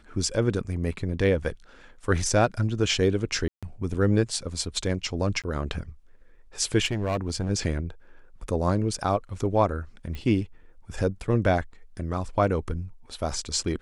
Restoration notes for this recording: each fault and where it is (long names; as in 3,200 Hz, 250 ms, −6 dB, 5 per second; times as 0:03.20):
0:03.48–0:03.63: drop-out 146 ms
0:05.42–0:05.44: drop-out 17 ms
0:06.85–0:07.50: clipping −22 dBFS
0:10.15: click −23 dBFS